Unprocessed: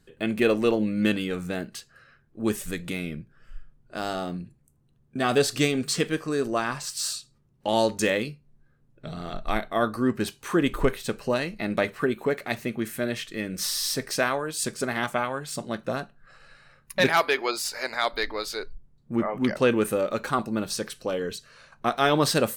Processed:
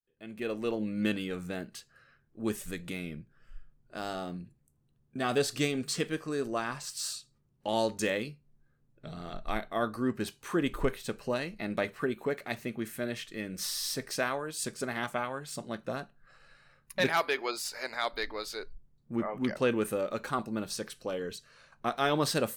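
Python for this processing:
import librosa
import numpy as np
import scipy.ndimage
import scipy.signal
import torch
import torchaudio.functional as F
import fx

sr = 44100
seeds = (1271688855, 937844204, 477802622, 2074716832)

y = fx.fade_in_head(x, sr, length_s=1.01)
y = y * 10.0 ** (-6.5 / 20.0)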